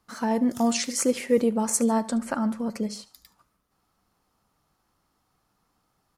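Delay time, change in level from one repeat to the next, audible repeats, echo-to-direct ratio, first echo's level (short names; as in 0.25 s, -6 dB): 73 ms, -6.5 dB, 2, -18.5 dB, -19.5 dB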